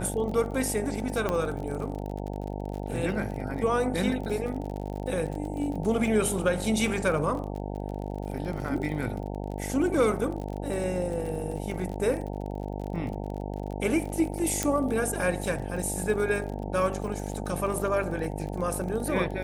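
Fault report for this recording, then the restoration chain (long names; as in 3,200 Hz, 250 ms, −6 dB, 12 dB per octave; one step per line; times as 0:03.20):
mains buzz 50 Hz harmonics 18 −34 dBFS
surface crackle 40 per second −34 dBFS
0:01.29: click −14 dBFS
0:14.63: click −11 dBFS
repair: click removal
hum removal 50 Hz, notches 18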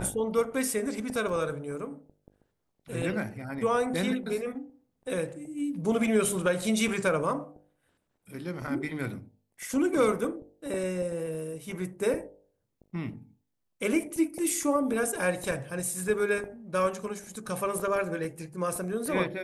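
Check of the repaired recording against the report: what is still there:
0:01.29: click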